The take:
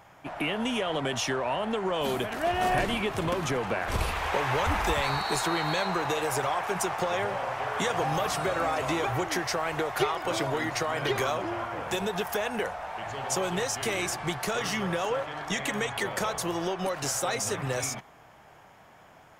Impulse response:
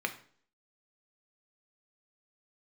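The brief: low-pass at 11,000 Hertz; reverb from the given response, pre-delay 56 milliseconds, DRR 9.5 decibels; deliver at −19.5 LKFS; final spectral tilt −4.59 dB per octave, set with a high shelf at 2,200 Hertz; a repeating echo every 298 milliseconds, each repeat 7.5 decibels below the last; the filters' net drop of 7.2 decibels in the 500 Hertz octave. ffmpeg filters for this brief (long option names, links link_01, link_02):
-filter_complex "[0:a]lowpass=11000,equalizer=frequency=500:width_type=o:gain=-9,highshelf=frequency=2200:gain=-8.5,aecho=1:1:298|596|894|1192|1490:0.422|0.177|0.0744|0.0312|0.0131,asplit=2[link_01][link_02];[1:a]atrim=start_sample=2205,adelay=56[link_03];[link_02][link_03]afir=irnorm=-1:irlink=0,volume=-15dB[link_04];[link_01][link_04]amix=inputs=2:normalize=0,volume=13dB"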